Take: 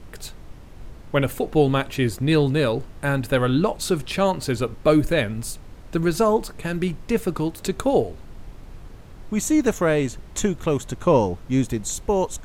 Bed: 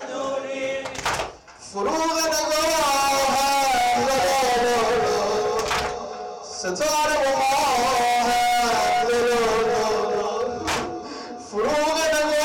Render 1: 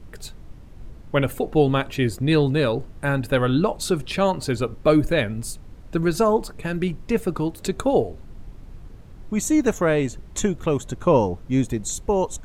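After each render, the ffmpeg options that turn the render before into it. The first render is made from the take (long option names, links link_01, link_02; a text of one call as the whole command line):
ffmpeg -i in.wav -af "afftdn=noise_reduction=6:noise_floor=-42" out.wav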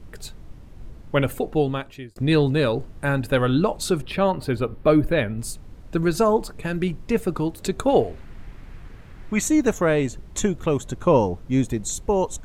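ffmpeg -i in.wav -filter_complex "[0:a]asettb=1/sr,asplit=3[link_01][link_02][link_03];[link_01]atrim=end=4.024[link_04];[link_02]atrim=start=4.02:end=5.39,asetpts=PTS-STARTPTS,afade=type=in:duration=0.004:curve=qsin,afade=type=out:start_time=1.366:duration=0.004:curve=qsin,equalizer=frequency=6700:width=1.2:gain=-15[link_05];[link_03]atrim=start=5.386[link_06];[link_04][link_05]acrossfade=duration=0.004:curve1=hsin:curve2=qsin[link_07];[link_07][link_06]acrossfade=duration=0.004:curve1=qsin:curve2=hsin,asettb=1/sr,asplit=3[link_08][link_09][link_10];[link_08]atrim=end=7.884[link_11];[link_09]atrim=start=7.88:end=9.48,asetpts=PTS-STARTPTS,afade=type=in:duration=0.004:curve=qsin,afade=type=out:start_time=1.596:duration=0.004:curve=qsin,equalizer=frequency=1900:width_type=o:width=1.6:gain=11[link_12];[link_10]atrim=start=9.476[link_13];[link_11][link_12]acrossfade=duration=0.004:curve1=hsin:curve2=qsin[link_14];[link_14][link_13]acrossfade=duration=0.004:curve1=qsin:curve2=hsin,asplit=2[link_15][link_16];[link_15]atrim=end=2.16,asetpts=PTS-STARTPTS,afade=type=out:start_time=1.35:duration=0.81[link_17];[link_16]atrim=start=2.16,asetpts=PTS-STARTPTS,afade=type=in:duration=0.004:curve=hsin[link_18];[link_17][link_18]concat=n=2:v=0:a=1" out.wav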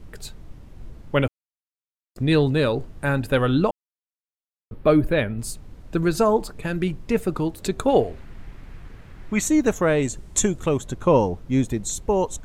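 ffmpeg -i in.wav -filter_complex "[0:a]asettb=1/sr,asplit=3[link_01][link_02][link_03];[link_01]atrim=end=10.024[link_04];[link_02]atrim=start=10.02:end=10.69,asetpts=PTS-STARTPTS,afade=type=in:duration=0.004:curve=qsin,afade=type=out:start_time=0.666:duration=0.004:curve=qsin,equalizer=frequency=8200:width_type=o:width=1:gain=9.5[link_05];[link_03]atrim=start=10.686[link_06];[link_04][link_05]acrossfade=duration=0.004:curve1=hsin:curve2=qsin[link_07];[link_07][link_06]acrossfade=duration=0.004:curve1=qsin:curve2=hsin,asplit=5[link_08][link_09][link_10][link_11][link_12];[link_08]atrim=end=1.28,asetpts=PTS-STARTPTS,afade=type=out:start_time=1.276:duration=0.004:curve=hsin[link_13];[link_09]atrim=start=1.28:end=2.15,asetpts=PTS-STARTPTS,volume=0[link_14];[link_10]atrim=start=2.15:end=3.71,asetpts=PTS-STARTPTS,afade=type=in:duration=0.004:curve=hsin,afade=type=out:start_time=1.556:duration=0.004:curve=hsin[link_15];[link_11]atrim=start=3.71:end=4.71,asetpts=PTS-STARTPTS,volume=0[link_16];[link_12]atrim=start=4.71,asetpts=PTS-STARTPTS,afade=type=in:duration=0.004:curve=hsin[link_17];[link_13][link_14][link_15][link_16][link_17]concat=n=5:v=0:a=1" out.wav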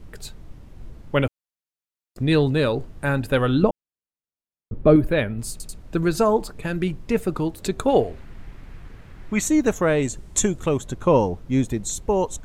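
ffmpeg -i in.wav -filter_complex "[0:a]asettb=1/sr,asplit=3[link_01][link_02][link_03];[link_01]atrim=end=3.634[link_04];[link_02]atrim=start=3.63:end=4.96,asetpts=PTS-STARTPTS,afade=type=in:duration=0.004:curve=qsin,afade=type=out:start_time=1.326:duration=0.004:curve=qsin,tiltshelf=frequency=750:gain=7[link_05];[link_03]atrim=start=4.956[link_06];[link_04][link_05]acrossfade=duration=0.004:curve1=hsin:curve2=qsin[link_07];[link_07][link_06]acrossfade=duration=0.004:curve1=qsin:curve2=hsin,asplit=4[link_08][link_09][link_10][link_11];[link_08]atrim=end=5.602[link_12];[link_09]atrim=start=5.508:end=5.602[link_13];[link_10]atrim=start=5.508:end=5.602[link_14];[link_11]atrim=start=5.778[link_15];[link_12][link_13]acrossfade=duration=0.004:curve1=hsin:curve2=hsin[link_16];[link_16][link_14]acrossfade=duration=0.004:curve1=hsin:curve2=hsin[link_17];[link_17][link_15]acrossfade=duration=0.004:curve1=hsin:curve2=hsin" out.wav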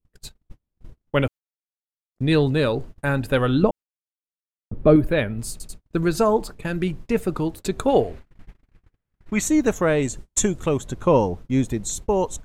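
ffmpeg -i in.wav -af "agate=range=-39dB:threshold=-34dB:ratio=16:detection=peak" out.wav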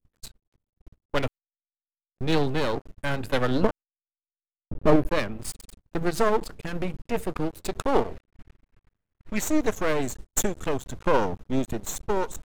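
ffmpeg -i in.wav -af "aeval=exprs='max(val(0),0)':channel_layout=same" out.wav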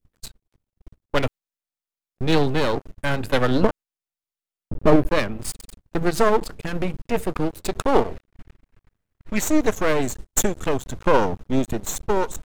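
ffmpeg -i in.wav -af "volume=4.5dB,alimiter=limit=-2dB:level=0:latency=1" out.wav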